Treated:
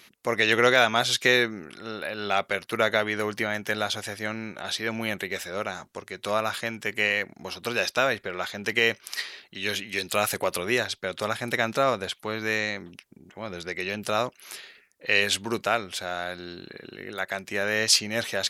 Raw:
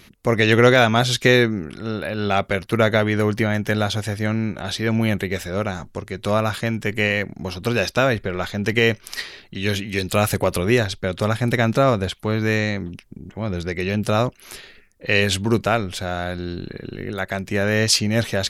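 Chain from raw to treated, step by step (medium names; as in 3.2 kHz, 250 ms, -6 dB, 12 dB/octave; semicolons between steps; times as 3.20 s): high-pass 730 Hz 6 dB/octave; trim -2 dB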